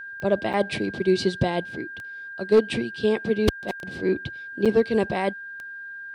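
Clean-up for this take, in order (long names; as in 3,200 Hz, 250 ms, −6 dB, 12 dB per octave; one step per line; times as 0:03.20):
clipped peaks rebuilt −10 dBFS
click removal
notch filter 1,600 Hz, Q 30
repair the gap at 0:00.53/0:04.65, 6.6 ms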